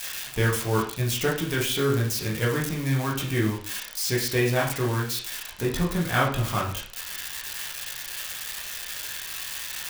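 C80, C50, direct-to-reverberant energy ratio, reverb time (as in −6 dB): 11.0 dB, 6.0 dB, −4.0 dB, 0.45 s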